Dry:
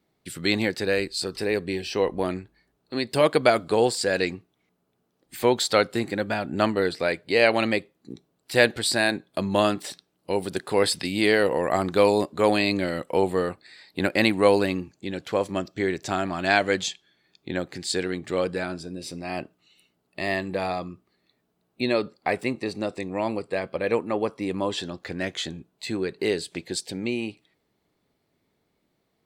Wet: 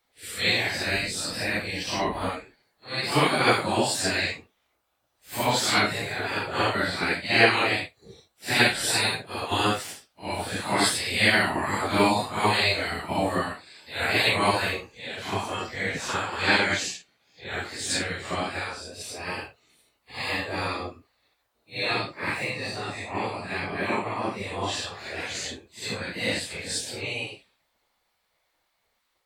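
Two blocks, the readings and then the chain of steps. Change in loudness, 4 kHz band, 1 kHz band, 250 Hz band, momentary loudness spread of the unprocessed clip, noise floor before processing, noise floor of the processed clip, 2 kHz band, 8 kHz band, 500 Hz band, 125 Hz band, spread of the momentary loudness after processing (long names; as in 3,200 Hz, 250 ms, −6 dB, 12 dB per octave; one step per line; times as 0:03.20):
−0.5 dB, +3.5 dB, +1.5 dB, −4.5 dB, 13 LU, −74 dBFS, −74 dBFS, +3.0 dB, +3.5 dB, −7.0 dB, +0.5 dB, 14 LU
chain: random phases in long frames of 200 ms
gate on every frequency bin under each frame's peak −10 dB weak
level +5 dB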